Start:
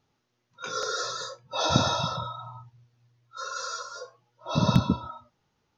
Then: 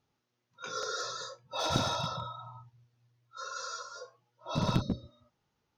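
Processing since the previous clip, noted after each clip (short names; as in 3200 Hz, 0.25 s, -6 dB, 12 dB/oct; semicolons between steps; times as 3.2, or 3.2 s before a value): spectral repair 4.84–5.23, 610–3700 Hz after; one-sided clip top -22 dBFS; gain -5.5 dB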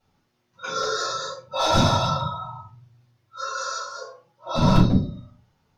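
shoebox room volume 180 m³, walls furnished, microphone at 4.9 m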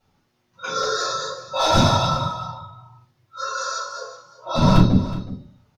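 echo 0.369 s -16 dB; gain +2.5 dB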